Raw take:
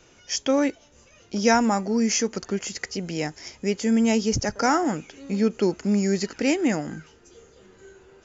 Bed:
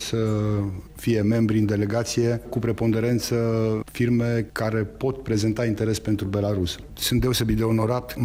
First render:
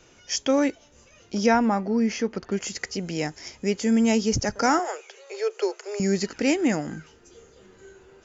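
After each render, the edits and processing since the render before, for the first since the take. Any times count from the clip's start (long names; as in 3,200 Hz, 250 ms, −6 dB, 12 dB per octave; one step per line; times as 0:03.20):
0:01.46–0:02.52: high-frequency loss of the air 210 metres
0:04.79–0:06.00: Butterworth high-pass 380 Hz 96 dB per octave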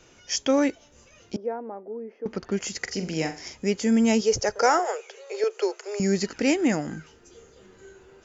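0:01.36–0:02.26: four-pole ladder band-pass 490 Hz, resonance 45%
0:02.80–0:03.54: flutter between parallel walls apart 7.5 metres, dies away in 0.31 s
0:04.21–0:05.44: low shelf with overshoot 340 Hz −8 dB, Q 3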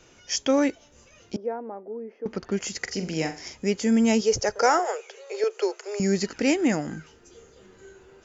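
no processing that can be heard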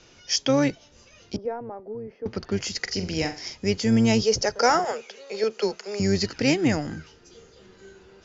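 sub-octave generator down 1 octave, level −6 dB
low-pass with resonance 4,900 Hz, resonance Q 2.1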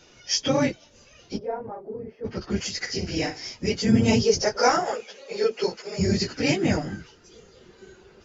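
random phases in long frames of 50 ms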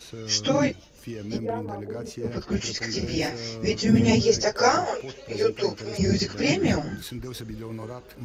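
mix in bed −14.5 dB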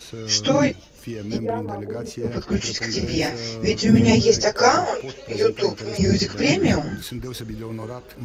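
level +4 dB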